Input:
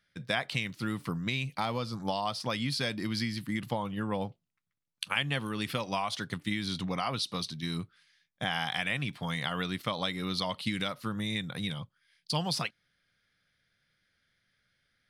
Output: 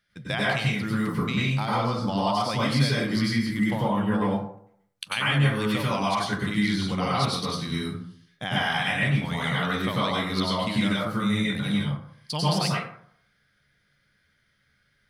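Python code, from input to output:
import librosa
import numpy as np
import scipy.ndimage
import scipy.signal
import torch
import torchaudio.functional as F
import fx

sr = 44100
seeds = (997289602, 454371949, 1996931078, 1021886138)

y = fx.high_shelf(x, sr, hz=11000.0, db=-6.5, at=(1.69, 2.26))
y = fx.spec_box(y, sr, start_s=7.79, length_s=0.38, low_hz=290.0, high_hz=2700.0, gain_db=-13)
y = fx.rev_plate(y, sr, seeds[0], rt60_s=0.63, hf_ratio=0.45, predelay_ms=85, drr_db=-6.5)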